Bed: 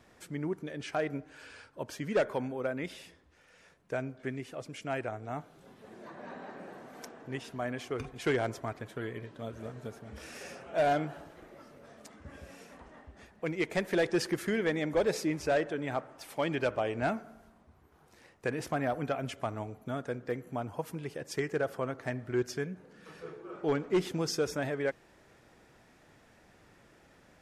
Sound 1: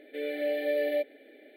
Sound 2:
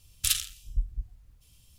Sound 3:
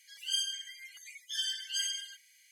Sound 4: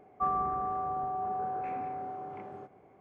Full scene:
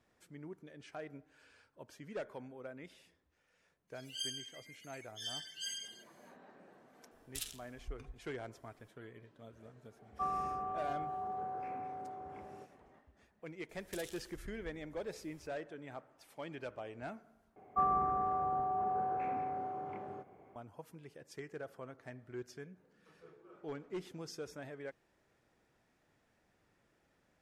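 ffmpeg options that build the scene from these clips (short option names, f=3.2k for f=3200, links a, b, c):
-filter_complex "[2:a]asplit=2[a][b];[4:a]asplit=2[c][d];[0:a]volume=-14dB[e];[b]acompressor=threshold=-36dB:ratio=6:attack=3.2:release=140:knee=1:detection=peak[f];[e]asplit=2[g][h];[g]atrim=end=17.564[i];[d]atrim=end=3,asetpts=PTS-STARTPTS,volume=-1dB[j];[h]atrim=start=20.556[k];[3:a]atrim=end=2.51,asetpts=PTS-STARTPTS,volume=-8.5dB,afade=t=in:d=0.1,afade=t=out:st=2.41:d=0.1,adelay=3870[l];[a]atrim=end=1.78,asetpts=PTS-STARTPTS,volume=-17dB,afade=t=in:d=0.004:c=hsin,afade=t=out:st=1.776:d=0.004:c=hsin,adelay=7110[m];[c]atrim=end=3,asetpts=PTS-STARTPTS,volume=-6.5dB,afade=t=in:d=0.004:c=hsin,afade=t=out:st=2.996:d=0.004:c=hsin,adelay=9990[n];[f]atrim=end=1.78,asetpts=PTS-STARTPTS,volume=-10dB,afade=t=in:d=0.004:c=hsin,afade=t=out:st=1.776:d=0.004:c=hsin,adelay=13690[o];[i][j]acrossfade=d=0.004:c1=hsin:c2=hsin[p];[p][k]acrossfade=d=0.004:c1=hsin:c2=hsin[q];[q][l][m][n][o]amix=inputs=5:normalize=0"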